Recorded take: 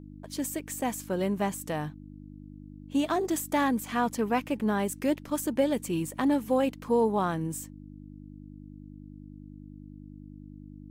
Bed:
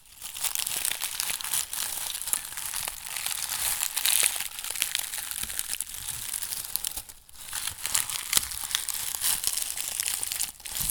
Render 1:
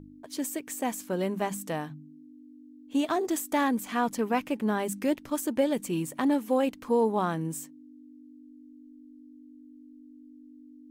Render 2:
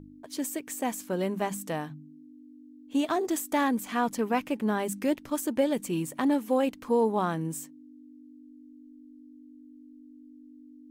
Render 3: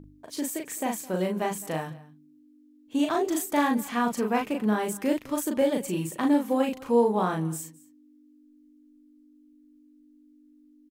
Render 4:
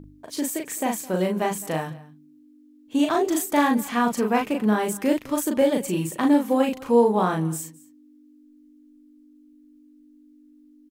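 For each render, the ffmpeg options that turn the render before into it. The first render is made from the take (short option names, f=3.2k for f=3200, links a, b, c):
-af "bandreject=f=50:t=h:w=4,bandreject=f=100:t=h:w=4,bandreject=f=150:t=h:w=4,bandreject=f=200:t=h:w=4"
-af anull
-filter_complex "[0:a]asplit=2[a][b];[b]adelay=38,volume=-3dB[c];[a][c]amix=inputs=2:normalize=0,aecho=1:1:212:0.0891"
-af "volume=4dB"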